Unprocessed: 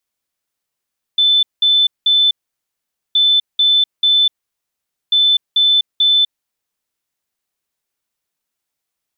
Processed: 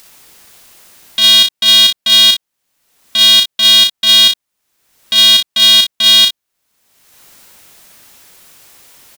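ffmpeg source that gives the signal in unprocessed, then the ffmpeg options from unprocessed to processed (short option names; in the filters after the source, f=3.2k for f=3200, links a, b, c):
-f lavfi -i "aevalsrc='0.355*sin(2*PI*3520*t)*clip(min(mod(mod(t,1.97),0.44),0.25-mod(mod(t,1.97),0.44))/0.005,0,1)*lt(mod(t,1.97),1.32)':d=5.91:s=44100"
-af "acompressor=mode=upward:threshold=-18dB:ratio=2.5,aecho=1:1:35|58:0.631|0.531,aeval=exprs='val(0)*sgn(sin(2*PI*220*n/s))':c=same"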